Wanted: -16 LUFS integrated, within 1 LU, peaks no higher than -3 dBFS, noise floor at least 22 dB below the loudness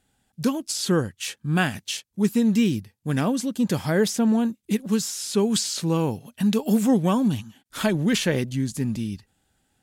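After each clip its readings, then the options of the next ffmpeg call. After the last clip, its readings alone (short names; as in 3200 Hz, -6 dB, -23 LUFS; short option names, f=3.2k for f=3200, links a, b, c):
loudness -24.0 LUFS; peak -9.5 dBFS; loudness target -16.0 LUFS
-> -af "volume=8dB,alimiter=limit=-3dB:level=0:latency=1"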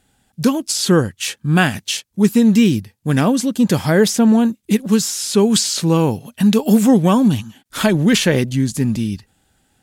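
loudness -16.0 LUFS; peak -3.0 dBFS; noise floor -66 dBFS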